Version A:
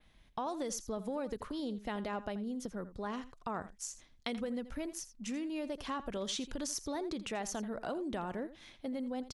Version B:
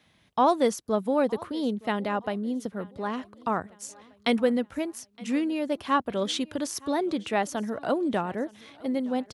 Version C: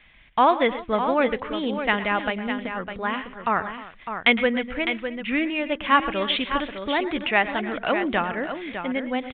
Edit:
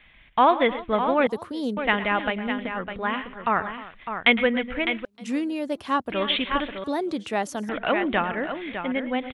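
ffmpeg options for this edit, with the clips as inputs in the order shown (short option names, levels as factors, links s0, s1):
-filter_complex "[1:a]asplit=3[s0][s1][s2];[2:a]asplit=4[s3][s4][s5][s6];[s3]atrim=end=1.272[s7];[s0]atrim=start=1.268:end=1.772[s8];[s4]atrim=start=1.768:end=5.052[s9];[s1]atrim=start=5.048:end=6.122[s10];[s5]atrim=start=6.118:end=6.842[s11];[s2]atrim=start=6.838:end=7.692[s12];[s6]atrim=start=7.688[s13];[s7][s8]acrossfade=d=0.004:c1=hsin:c2=hsin[s14];[s14][s9]acrossfade=d=0.004:c1=hsin:c2=hsin[s15];[s15][s10]acrossfade=d=0.004:c1=hsin:c2=hsin[s16];[s16][s11]acrossfade=d=0.004:c1=hsin:c2=hsin[s17];[s17][s12]acrossfade=d=0.004:c1=hsin:c2=hsin[s18];[s18][s13]acrossfade=d=0.004:c1=hsin:c2=hsin"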